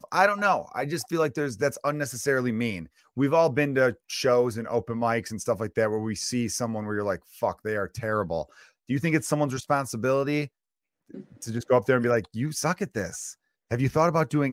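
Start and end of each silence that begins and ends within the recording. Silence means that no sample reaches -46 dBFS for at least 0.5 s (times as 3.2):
10.47–11.1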